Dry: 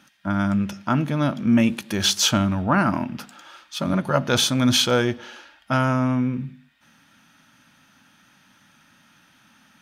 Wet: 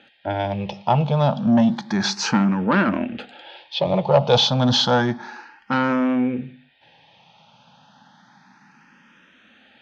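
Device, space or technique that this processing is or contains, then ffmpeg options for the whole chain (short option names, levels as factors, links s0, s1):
barber-pole phaser into a guitar amplifier: -filter_complex "[0:a]asplit=2[s0][s1];[s1]afreqshift=0.31[s2];[s0][s2]amix=inputs=2:normalize=1,asoftclip=type=tanh:threshold=0.15,highpass=92,equalizer=f=94:t=q:w=4:g=-6,equalizer=f=290:t=q:w=4:g=-6,equalizer=f=480:t=q:w=4:g=6,equalizer=f=820:t=q:w=4:g=9,equalizer=f=1300:t=q:w=4:g=-6,equalizer=f=2100:t=q:w=4:g=-3,lowpass=f=4500:w=0.5412,lowpass=f=4500:w=1.3066,volume=2.37"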